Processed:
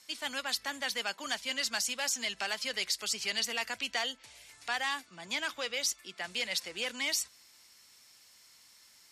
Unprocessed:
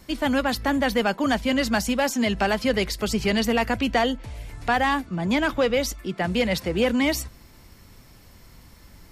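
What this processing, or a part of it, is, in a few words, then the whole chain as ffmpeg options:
piezo pickup straight into a mixer: -af "lowpass=7300,aderivative,volume=1.5"

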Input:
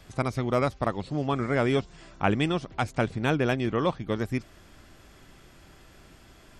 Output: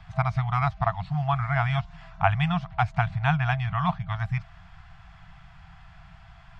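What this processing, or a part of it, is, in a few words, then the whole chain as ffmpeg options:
phone in a pocket: -af "afftfilt=real='re*(1-between(b*sr/4096,190,650))':imag='im*(1-between(b*sr/4096,190,650))':win_size=4096:overlap=0.75,lowpass=3700,highshelf=f=2300:g=-8.5,volume=2"

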